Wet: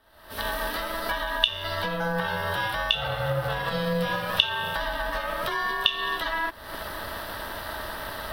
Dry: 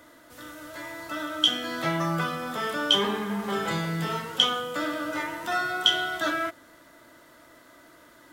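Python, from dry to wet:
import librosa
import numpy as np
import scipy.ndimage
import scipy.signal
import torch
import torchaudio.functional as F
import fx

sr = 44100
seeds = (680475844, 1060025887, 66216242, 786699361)

y = fx.recorder_agc(x, sr, target_db=-9.5, rise_db_per_s=64.0, max_gain_db=30)
y = fx.fixed_phaser(y, sr, hz=2000.0, stages=6)
y = y * np.sin(2.0 * np.pi * 340.0 * np.arange(len(y)) / sr)
y = y * librosa.db_to_amplitude(-4.5)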